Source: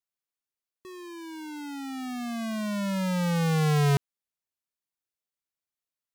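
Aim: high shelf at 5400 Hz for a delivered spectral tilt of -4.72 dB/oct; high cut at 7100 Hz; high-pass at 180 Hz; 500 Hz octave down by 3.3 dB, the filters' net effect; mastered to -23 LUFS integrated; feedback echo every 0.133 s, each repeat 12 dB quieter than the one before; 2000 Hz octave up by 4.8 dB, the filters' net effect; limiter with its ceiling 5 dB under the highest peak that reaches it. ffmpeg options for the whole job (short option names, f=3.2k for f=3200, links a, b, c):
-af "highpass=180,lowpass=7.1k,equalizer=f=500:t=o:g=-4,equalizer=f=2k:t=o:g=7,highshelf=f=5.4k:g=-6,alimiter=limit=-18dB:level=0:latency=1,aecho=1:1:133|266|399:0.251|0.0628|0.0157,volume=9dB"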